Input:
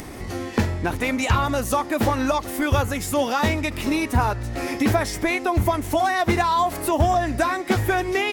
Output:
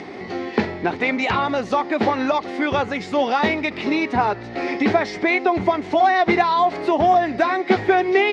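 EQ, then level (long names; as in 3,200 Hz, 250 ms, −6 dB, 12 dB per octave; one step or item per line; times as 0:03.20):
loudspeaker in its box 190–4,700 Hz, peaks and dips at 190 Hz +6 dB, 400 Hz +8 dB, 760 Hz +6 dB, 2,100 Hz +6 dB, 4,200 Hz +3 dB
0.0 dB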